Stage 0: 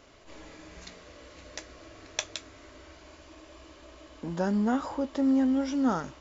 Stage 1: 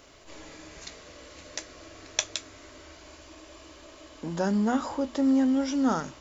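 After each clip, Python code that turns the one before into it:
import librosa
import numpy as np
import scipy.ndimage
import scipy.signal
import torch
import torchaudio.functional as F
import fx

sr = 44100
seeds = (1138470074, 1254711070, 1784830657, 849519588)

y = fx.high_shelf(x, sr, hz=5600.0, db=9.0)
y = fx.hum_notches(y, sr, base_hz=60, count=4)
y = y * librosa.db_to_amplitude(1.5)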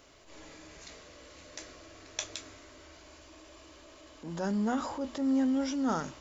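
y = fx.transient(x, sr, attack_db=-5, sustain_db=3)
y = y * librosa.db_to_amplitude(-4.5)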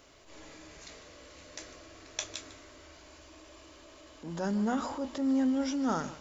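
y = x + 10.0 ** (-16.0 / 20.0) * np.pad(x, (int(151 * sr / 1000.0), 0))[:len(x)]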